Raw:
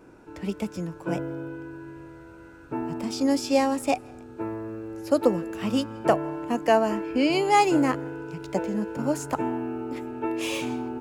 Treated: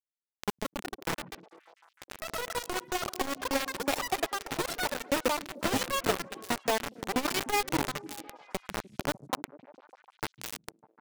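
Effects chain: per-bin expansion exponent 1.5; notch 3200 Hz, Q 16; compressor 3:1, threshold -35 dBFS, peak gain reduction 15 dB; bit-crush 5-bit; on a send: delay with a stepping band-pass 0.15 s, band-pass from 160 Hz, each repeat 0.7 oct, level -11 dB; on the sum: echoes that change speed 0.29 s, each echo +5 st, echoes 3; core saturation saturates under 190 Hz; gain +4.5 dB

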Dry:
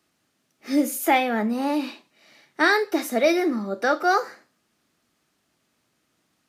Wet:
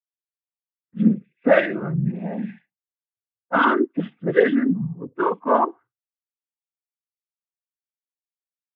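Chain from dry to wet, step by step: per-bin expansion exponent 2; gate with hold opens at -47 dBFS; low-pass opened by the level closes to 760 Hz, open at -23 dBFS; downsampling 8000 Hz; speed mistake 45 rpm record played at 33 rpm; noise vocoder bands 16; gain +5 dB

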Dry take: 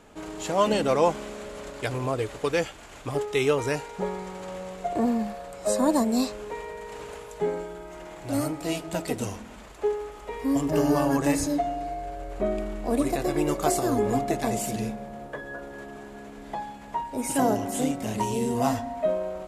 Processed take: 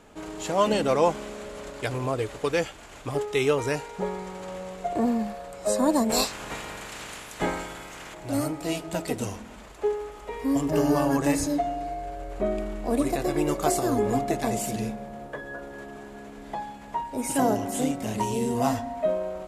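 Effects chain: 6.09–8.13 spectral limiter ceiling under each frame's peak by 23 dB

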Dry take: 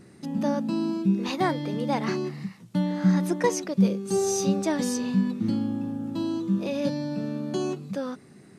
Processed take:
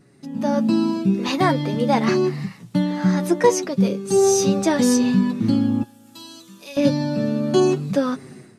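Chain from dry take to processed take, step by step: 5.83–6.77 pre-emphasis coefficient 0.97; AGC gain up to 16 dB; flange 0.75 Hz, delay 6.9 ms, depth 1.9 ms, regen +36%

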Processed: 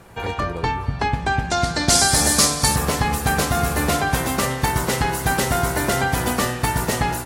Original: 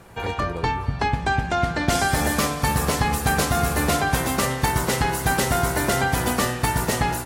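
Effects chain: 1.5–2.76 band shelf 6500 Hz +12 dB; gain +1 dB

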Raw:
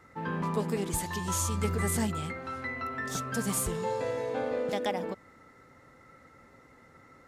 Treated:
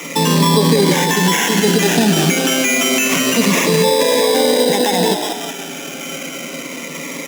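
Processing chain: in parallel at +2 dB: compressor, threshold -43 dBFS, peak gain reduction 17.5 dB; on the sum: comb 7.2 ms, depth 33%; on a send: frequency-shifting echo 0.183 s, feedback 43%, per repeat +120 Hz, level -11.5 dB; on the sum: sample-rate reducer 4400 Hz, jitter 0%; steep high-pass 160 Hz 72 dB/oct; bell 5000 Hz +4.5 dB 3 oct; notch 1300 Hz, Q 5.3; maximiser +24 dB; cascading phaser falling 0.29 Hz; gain -1.5 dB

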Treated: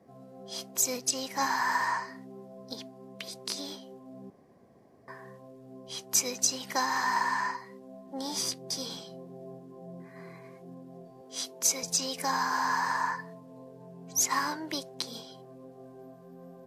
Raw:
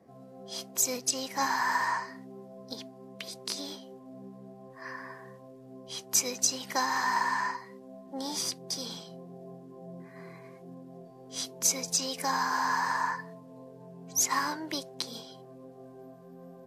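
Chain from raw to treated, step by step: 4.3–5.08 room tone; 8.32–9.59 doubler 15 ms -8 dB; 11.21–11.83 HPF 270 Hz 12 dB/oct

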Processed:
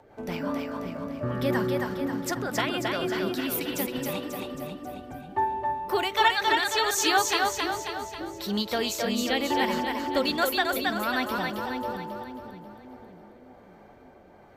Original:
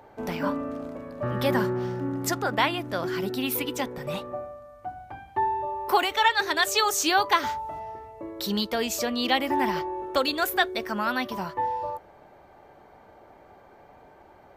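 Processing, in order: rotary speaker horn 5 Hz, later 1.2 Hz, at 4.57; split-band echo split 410 Hz, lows 0.571 s, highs 0.27 s, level -3 dB; ending taper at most 250 dB/s

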